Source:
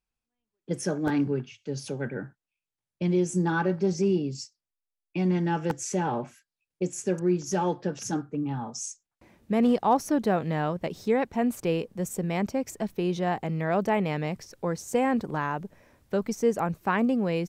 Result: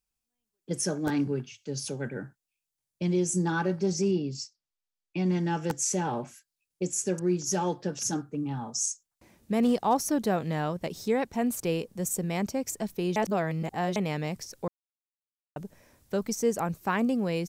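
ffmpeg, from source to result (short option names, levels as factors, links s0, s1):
-filter_complex "[0:a]asettb=1/sr,asplit=3[s0][s1][s2];[s0]atrim=end=4.114[s3];[s1]atrim=start=4.11:end=5.26,asetpts=PTS-STARTPTS,afade=t=in:d=0.004:c=qsin,afade=t=out:st=1.146:d=0.004:c=qsin,lowpass=5300[s4];[s2]atrim=start=5.256[s5];[s3][s4]acrossfade=d=0.004:c1=hsin:c2=qsin[s6];[s6][s5]acrossfade=d=0.004:c1=qsin:c2=hsin,asplit=5[s7][s8][s9][s10][s11];[s7]atrim=end=13.162[s12];[s8]atrim=start=13.158:end=13.962,asetpts=PTS-STARTPTS,areverse[s13];[s9]atrim=start=13.958:end=14.68,asetpts=PTS-STARTPTS,afade=t=out:st=0.718:d=0.004:c=hsin[s14];[s10]atrim=start=14.68:end=15.56,asetpts=PTS-STARTPTS,volume=0[s15];[s11]atrim=start=15.56,asetpts=PTS-STARTPTS,afade=t=in:d=0.004:c=hsin[s16];[s12][s13]acrossfade=d=0.004:c1=hsin:c2=hsin[s17];[s14][s15][s16]concat=n=3:v=0:a=1[s18];[s17][s18]acrossfade=d=0.004:c1=hsin:c2=hsin,bass=f=250:g=1,treble=f=4000:g=10,volume=0.75"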